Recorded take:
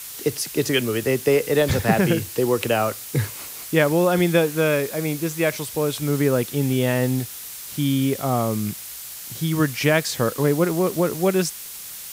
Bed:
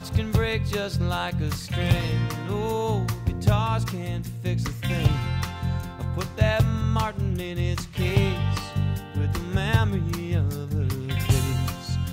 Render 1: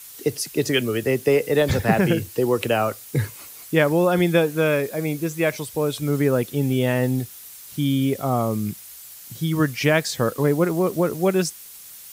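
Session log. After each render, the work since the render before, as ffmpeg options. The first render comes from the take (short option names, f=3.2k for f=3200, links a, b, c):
-af "afftdn=nr=8:nf=-36"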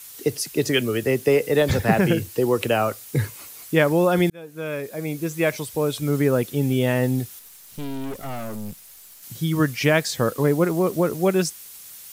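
-filter_complex "[0:a]asettb=1/sr,asplit=3[a][b][c];[a]atrim=end=7.394[d];[b]atrim=start=7.39:end=9.23,asetpts=PTS-STARTPTS,afade=t=in:d=0.004:c=qsin,afade=t=out:st=1.836:d=0.004:c=qsin,aeval=exprs='(tanh(28.2*val(0)+0.8)-tanh(0.8))/28.2':c=same[e];[c]atrim=start=9.226[f];[d][e]acrossfade=d=0.004:c1=hsin:c2=qsin[g];[g][f]acrossfade=d=0.004:c1=qsin:c2=hsin,asplit=2[h][i];[h]atrim=end=4.3,asetpts=PTS-STARTPTS,afade=t=out:st=4.296:d=0.004:c=hsin[j];[i]atrim=start=4.3,asetpts=PTS-STARTPTS,afade=t=in:d=1.12[k];[j][k]concat=n=2:v=0:a=1"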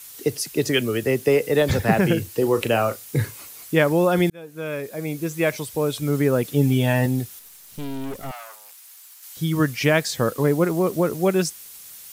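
-filter_complex "[0:a]asettb=1/sr,asplit=3[a][b][c];[a]atrim=end=2.354[d];[b]atrim=start=2.35:end=3.41,asetpts=PTS-STARTPTS,afade=t=in:d=0.004:c=qsin,afade=t=out:st=1.056:d=0.004:c=qsin,asplit=2[e][f];[f]adelay=35,volume=-11dB[g];[e][g]amix=inputs=2:normalize=0,atrim=end_sample=46746[h];[c]atrim=start=3.406[i];[d][h]acrossfade=d=0.004:c1=hsin:c2=qsin[j];[j][i]acrossfade=d=0.004:c1=qsin:c2=hsin,asettb=1/sr,asplit=3[k][l][m];[k]atrim=end=6.444[n];[l]atrim=start=6.44:end=7.06,asetpts=PTS-STARTPTS,afade=t=in:d=0.004:c=qsin,afade=t=out:st=0.616:d=0.004:c=qsin,aecho=1:1:6.8:0.65,atrim=end_sample=27342[o];[m]atrim=start=7.056[p];[n][o]acrossfade=d=0.004:c1=hsin:c2=qsin[q];[q][p]acrossfade=d=0.004:c1=qsin:c2=hsin,asettb=1/sr,asplit=3[r][s][t];[r]atrim=end=8.314[u];[s]atrim=start=8.31:end=9.37,asetpts=PTS-STARTPTS,afade=t=in:d=0.004:c=qsin,afade=t=out:st=1.056:d=0.004:c=qsin,highpass=f=800:w=0.5412,highpass=f=800:w=1.3066[v];[t]atrim=start=9.366[w];[u][v]acrossfade=d=0.004:c1=hsin:c2=qsin[x];[x][w]acrossfade=d=0.004:c1=qsin:c2=hsin"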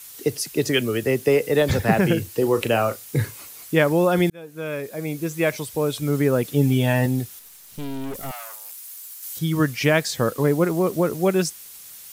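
-filter_complex "[0:a]asettb=1/sr,asplit=3[a][b][c];[a]atrim=end=8.144[d];[b]atrim=start=8.14:end=9.39,asetpts=PTS-STARTPTS,afade=t=in:d=0.004:c=qsin,afade=t=out:st=1.246:d=0.004:c=qsin,highshelf=f=6k:g=9[e];[c]atrim=start=9.386[f];[d][e]acrossfade=d=0.004:c1=hsin:c2=qsin[g];[g][f]acrossfade=d=0.004:c1=qsin:c2=hsin"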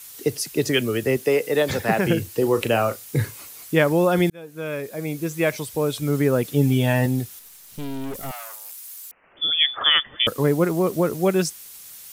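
-filter_complex "[0:a]asettb=1/sr,asplit=3[a][b][c];[a]atrim=end=1.174[d];[b]atrim=start=1.17:end=2.07,asetpts=PTS-STARTPTS,afade=t=in:d=0.004:c=qsin,afade=t=out:st=0.896:d=0.004:c=qsin,highpass=f=280:p=1[e];[c]atrim=start=2.066[f];[d][e]acrossfade=d=0.004:c1=hsin:c2=qsin[g];[g][f]acrossfade=d=0.004:c1=qsin:c2=hsin,asettb=1/sr,asplit=3[h][i][j];[h]atrim=end=9.114[k];[i]atrim=start=9.11:end=10.27,asetpts=PTS-STARTPTS,afade=t=in:d=0.004:c=qsin,afade=t=out:st=1.156:d=0.004:c=qsin,lowpass=f=3.1k:t=q:w=0.5098,lowpass=f=3.1k:t=q:w=0.6013,lowpass=f=3.1k:t=q:w=0.9,lowpass=f=3.1k:t=q:w=2.563,afreqshift=-3600[l];[j]atrim=start=10.266[m];[k][l]acrossfade=d=0.004:c1=hsin:c2=qsin[n];[n][m]acrossfade=d=0.004:c1=qsin:c2=hsin"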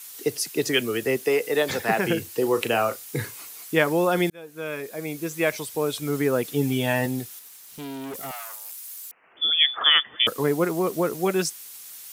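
-af "highpass=f=330:p=1,bandreject=f=570:w=12"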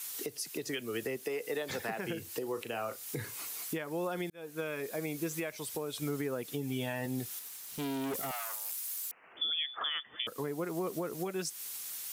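-af "acompressor=threshold=-30dB:ratio=6,alimiter=level_in=1dB:limit=-24dB:level=0:latency=1:release=369,volume=-1dB"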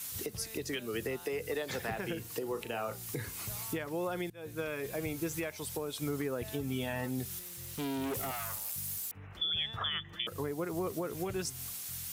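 -filter_complex "[1:a]volume=-25.5dB[a];[0:a][a]amix=inputs=2:normalize=0"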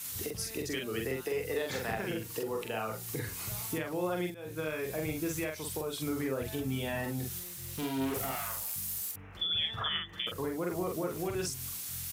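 -filter_complex "[0:a]asplit=2[a][b];[b]adelay=45,volume=-3dB[c];[a][c]amix=inputs=2:normalize=0"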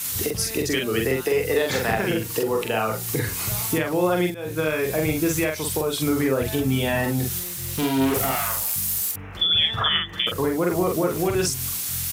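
-af "volume=12dB"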